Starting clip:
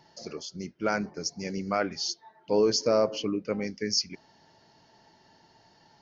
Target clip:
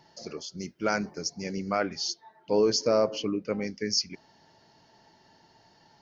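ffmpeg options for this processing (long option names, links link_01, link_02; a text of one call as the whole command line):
ffmpeg -i in.wav -filter_complex "[0:a]asettb=1/sr,asplit=3[link_01][link_02][link_03];[link_01]atrim=end=0.574[link_04];[link_02]atrim=start=0.57:end=1.21,asetpts=PTS-STARTPTS,afade=type=in:duration=0.004:curve=qsin,afade=type=out:start_time=0.636:duration=0.004:curve=qsin,highshelf=frequency=4800:gain=9[link_05];[link_03]atrim=start=1.206[link_06];[link_04][link_05]acrossfade=duration=0.004:curve1=hsin:curve2=qsin[link_07];[link_07][link_06]acrossfade=duration=0.004:curve1=qsin:curve2=hsin" out.wav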